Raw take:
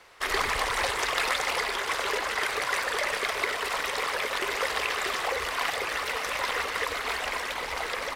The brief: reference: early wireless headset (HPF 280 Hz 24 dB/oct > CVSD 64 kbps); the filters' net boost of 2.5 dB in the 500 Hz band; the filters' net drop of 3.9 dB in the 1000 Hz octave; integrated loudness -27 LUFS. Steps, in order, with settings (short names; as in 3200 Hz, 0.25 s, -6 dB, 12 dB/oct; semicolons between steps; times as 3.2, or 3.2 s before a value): HPF 280 Hz 24 dB/oct; bell 500 Hz +4.5 dB; bell 1000 Hz -6 dB; CVSD 64 kbps; gain +2 dB